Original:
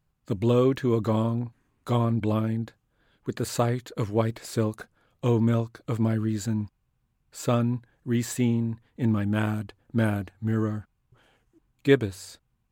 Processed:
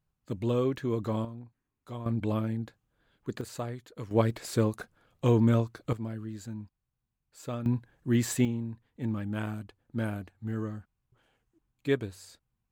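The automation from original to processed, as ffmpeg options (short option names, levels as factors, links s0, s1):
-af "asetnsamples=n=441:p=0,asendcmd='1.25 volume volume -15.5dB;2.06 volume volume -4.5dB;3.41 volume volume -11.5dB;4.11 volume volume -0.5dB;5.93 volume volume -12dB;7.66 volume volume 0dB;8.45 volume volume -8dB',volume=0.473"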